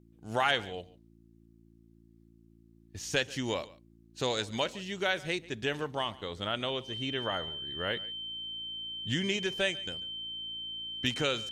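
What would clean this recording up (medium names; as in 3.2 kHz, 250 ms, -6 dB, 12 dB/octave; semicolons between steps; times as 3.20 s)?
de-hum 56.4 Hz, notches 6; band-stop 3.1 kHz, Q 30; inverse comb 142 ms -20.5 dB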